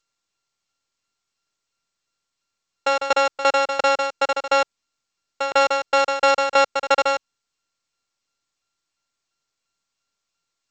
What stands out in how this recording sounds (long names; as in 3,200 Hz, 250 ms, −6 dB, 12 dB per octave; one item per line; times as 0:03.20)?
a buzz of ramps at a fixed pitch in blocks of 32 samples
tremolo saw down 2.9 Hz, depth 85%
G.722